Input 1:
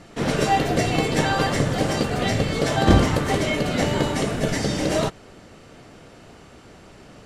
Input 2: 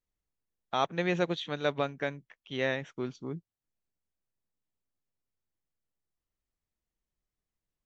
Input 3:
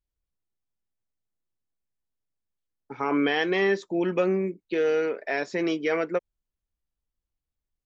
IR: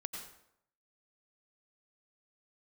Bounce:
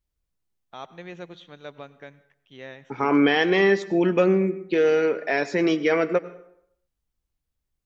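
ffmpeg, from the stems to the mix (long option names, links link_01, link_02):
-filter_complex "[1:a]volume=-12dB,asplit=2[link_01][link_02];[link_02]volume=-10.5dB[link_03];[2:a]equalizer=frequency=110:width_type=o:width=2.1:gain=3.5,volume=2dB,asplit=2[link_04][link_05];[link_05]volume=-8.5dB[link_06];[3:a]atrim=start_sample=2205[link_07];[link_03][link_06]amix=inputs=2:normalize=0[link_08];[link_08][link_07]afir=irnorm=-1:irlink=0[link_09];[link_01][link_04][link_09]amix=inputs=3:normalize=0"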